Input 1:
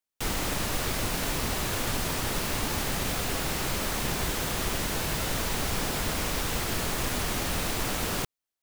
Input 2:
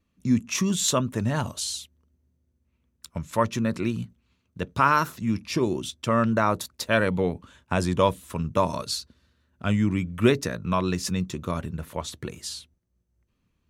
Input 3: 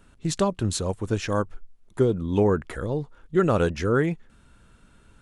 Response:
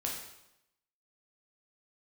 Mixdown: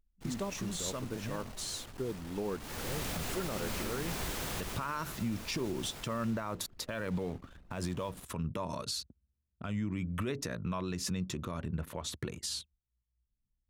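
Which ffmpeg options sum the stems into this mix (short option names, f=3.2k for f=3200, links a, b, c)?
-filter_complex "[0:a]asoftclip=type=tanh:threshold=-17.5dB,volume=-7dB,afade=t=in:st=2.59:d=0.35:silence=0.281838,afade=t=out:st=4.59:d=0.29:silence=0.375837,afade=t=out:st=5.97:d=0.48:silence=0.473151[a];[1:a]alimiter=limit=-14dB:level=0:latency=1:release=116,acompressor=threshold=-26dB:ratio=6,volume=-0.5dB[b];[2:a]equalizer=f=99:t=o:w=0.23:g=-12,volume=-14dB,asplit=2[c][d];[d]apad=whole_len=604163[e];[b][e]sidechaincompress=threshold=-44dB:ratio=8:attack=7.8:release=740[f];[a][f][c]amix=inputs=3:normalize=0,anlmdn=0.0158,alimiter=level_in=2dB:limit=-24dB:level=0:latency=1:release=87,volume=-2dB"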